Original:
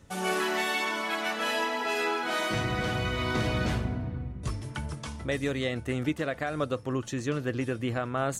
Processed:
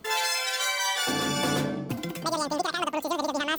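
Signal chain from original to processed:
wrong playback speed 33 rpm record played at 78 rpm
level +2 dB

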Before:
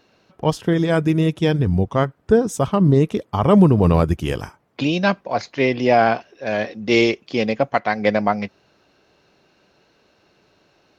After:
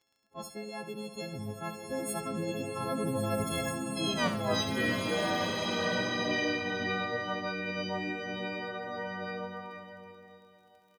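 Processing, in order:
every partial snapped to a pitch grid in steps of 4 semitones
source passing by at 0:04.32, 59 m/s, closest 11 metres
reversed playback
downward compressor 4 to 1, threshold −36 dBFS, peak gain reduction 19.5 dB
reversed playback
surface crackle 13 per second −59 dBFS
on a send: repeating echo 68 ms, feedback 27%, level −10 dB
on the sum: slow-attack reverb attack 1,600 ms, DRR −0.5 dB
level +4.5 dB

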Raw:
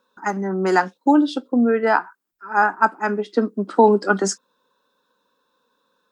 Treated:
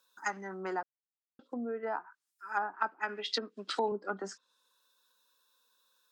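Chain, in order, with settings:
0:02.74–0:03.92: meter weighting curve D
treble cut that deepens with the level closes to 680 Hz, closed at −14.5 dBFS
first-order pre-emphasis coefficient 0.97
0:00.83–0:01.39: silence
level +6 dB

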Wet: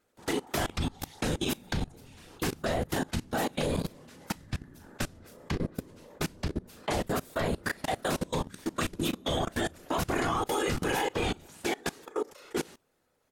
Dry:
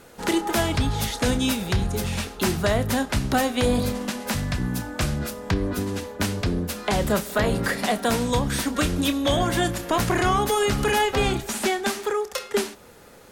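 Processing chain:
random phases in short frames
ambience of single reflections 12 ms −13 dB, 38 ms −9.5 dB
output level in coarse steps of 23 dB
level −5.5 dB

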